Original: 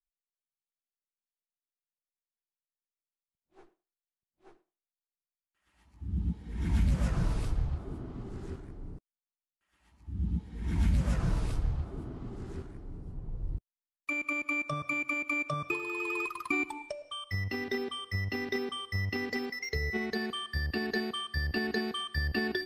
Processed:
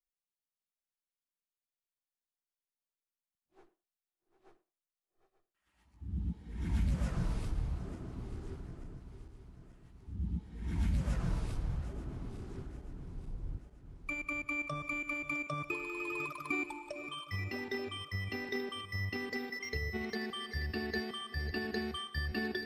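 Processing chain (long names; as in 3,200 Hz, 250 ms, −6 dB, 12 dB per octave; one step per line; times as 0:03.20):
feedback delay that plays each chunk backwards 442 ms, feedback 68%, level −12 dB
level −5 dB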